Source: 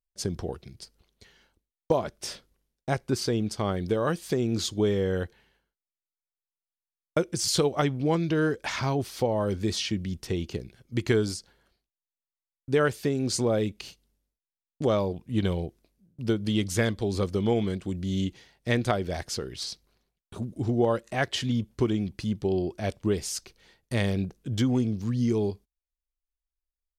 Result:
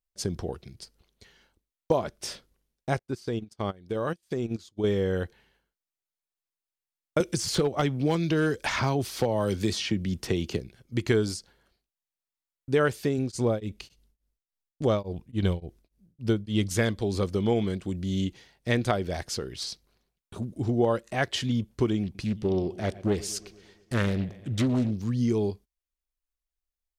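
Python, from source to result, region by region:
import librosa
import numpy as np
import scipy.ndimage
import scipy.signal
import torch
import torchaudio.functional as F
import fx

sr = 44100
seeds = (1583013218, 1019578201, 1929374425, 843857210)

y = fx.chain(x, sr, fx.level_steps(step_db=9),
    fx.upward_expand(threshold_db=-43.0, expansion=2.5), at=(2.99, 4.84))
y = fx.chain(y, sr, fx.clip_hard(threshold_db=-17.5),
    fx.band_squash(depth_pct=70), at=(7.2, 10.6))
y = fx.chain(y, sr, fx.low_shelf(hz=77.0, db=10.5),
    fx.tremolo_abs(hz=3.5), at=(13.18, 16.71))
y = fx.chain(y, sr, fx.echo_wet_lowpass(ms=116, feedback_pct=63, hz=3200.0, wet_db=-18.5),
    fx.doppler_dist(depth_ms=0.46), at=(22.03, 24.91))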